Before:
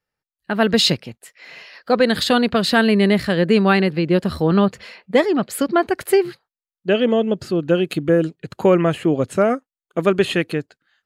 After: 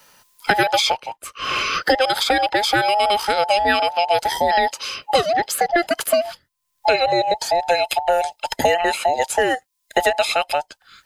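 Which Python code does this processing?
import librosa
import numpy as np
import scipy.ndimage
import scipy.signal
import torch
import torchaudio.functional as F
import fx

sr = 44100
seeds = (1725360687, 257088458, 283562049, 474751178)

y = fx.band_invert(x, sr, width_hz=1000)
y = fx.high_shelf(y, sr, hz=2500.0, db=11.0)
y = fx.band_squash(y, sr, depth_pct=100)
y = y * 10.0 ** (-3.5 / 20.0)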